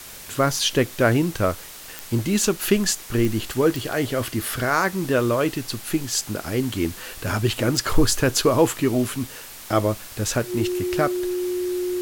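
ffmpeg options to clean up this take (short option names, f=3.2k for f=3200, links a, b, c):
-af "adeclick=t=4,bandreject=f=360:w=30,afftdn=nr=28:nf=-39"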